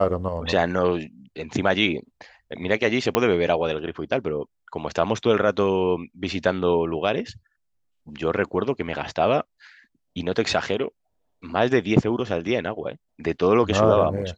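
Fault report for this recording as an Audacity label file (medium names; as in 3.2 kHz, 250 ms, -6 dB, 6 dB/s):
3.150000	3.150000	pop -4 dBFS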